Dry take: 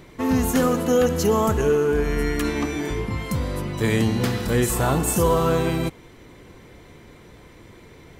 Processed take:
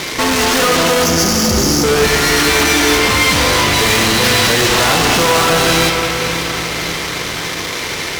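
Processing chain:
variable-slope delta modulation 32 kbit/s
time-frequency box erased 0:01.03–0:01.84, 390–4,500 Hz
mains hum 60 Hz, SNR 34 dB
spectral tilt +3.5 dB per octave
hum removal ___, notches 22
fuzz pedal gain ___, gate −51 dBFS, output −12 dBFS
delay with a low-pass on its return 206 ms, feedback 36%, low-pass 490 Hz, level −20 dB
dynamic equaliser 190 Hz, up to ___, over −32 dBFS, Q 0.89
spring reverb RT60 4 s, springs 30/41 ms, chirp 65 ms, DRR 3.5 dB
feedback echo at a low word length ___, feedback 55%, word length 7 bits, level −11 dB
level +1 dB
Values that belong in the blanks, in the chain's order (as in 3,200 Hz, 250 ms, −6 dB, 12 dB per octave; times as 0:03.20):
241.5 Hz, 43 dB, −4 dB, 558 ms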